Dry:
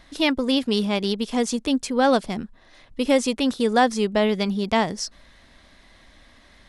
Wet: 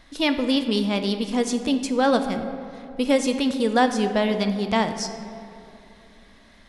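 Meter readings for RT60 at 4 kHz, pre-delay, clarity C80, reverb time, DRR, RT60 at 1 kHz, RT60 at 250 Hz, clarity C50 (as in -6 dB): 1.4 s, 4 ms, 10.0 dB, 2.8 s, 7.0 dB, 2.5 s, 3.3 s, 9.0 dB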